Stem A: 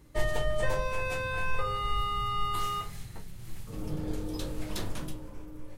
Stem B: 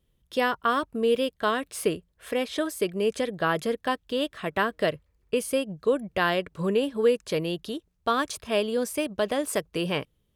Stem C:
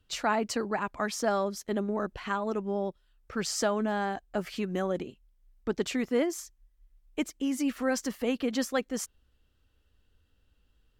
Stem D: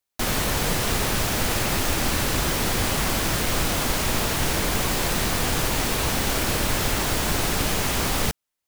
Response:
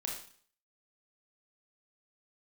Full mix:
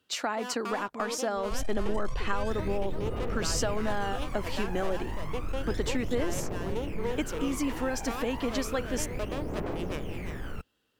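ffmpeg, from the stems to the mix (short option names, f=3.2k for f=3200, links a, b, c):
-filter_complex "[0:a]lowpass=7.3k,equalizer=f=1.2k:w=0.55:g=-13,asoftclip=type=hard:threshold=-33.5dB,adelay=1350,volume=-3.5dB[a];[1:a]aeval=exprs='clip(val(0),-1,0.0422)':c=same,adynamicsmooth=sensitivity=5:basefreq=740,volume=-8.5dB,asplit=2[b][c];[c]volume=-7.5dB[d];[2:a]volume=3dB[e];[3:a]afwtdn=0.0355,equalizer=f=420:t=o:w=1.8:g=9.5,adelay=2300,volume=-20dB[f];[a][f]amix=inputs=2:normalize=0,aphaser=in_gain=1:out_gain=1:delay=1.3:decay=0.77:speed=0.31:type=triangular,alimiter=level_in=0.5dB:limit=-24dB:level=0:latency=1:release=134,volume=-0.5dB,volume=0dB[g];[b][e]amix=inputs=2:normalize=0,highpass=220,acompressor=threshold=-27dB:ratio=6,volume=0dB[h];[d]aecho=0:1:345:1[i];[g][h][i]amix=inputs=3:normalize=0"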